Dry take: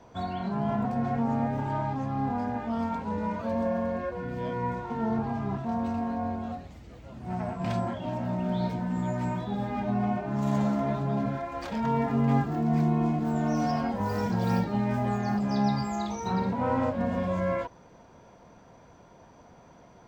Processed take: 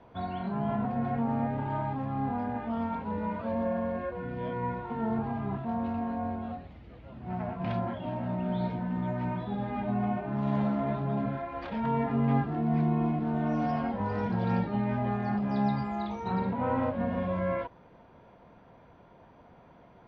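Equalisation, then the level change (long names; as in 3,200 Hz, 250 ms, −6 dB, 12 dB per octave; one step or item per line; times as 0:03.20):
low-pass filter 3,600 Hz 24 dB per octave
−2.0 dB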